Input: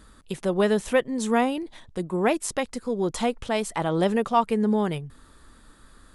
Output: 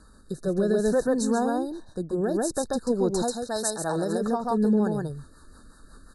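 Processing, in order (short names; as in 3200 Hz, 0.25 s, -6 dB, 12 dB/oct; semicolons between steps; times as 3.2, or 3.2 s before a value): brick-wall FIR band-stop 1800–3700 Hz; echo 0.136 s -3 dB; limiter -14.5 dBFS, peak gain reduction 5.5 dB; 3.22–4.21 tilt +2.5 dB/oct; rotary speaker horn 0.6 Hz, later 5.5 Hz, at 3.16; dynamic EQ 1100 Hz, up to -5 dB, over -47 dBFS, Q 3.6; gain +1.5 dB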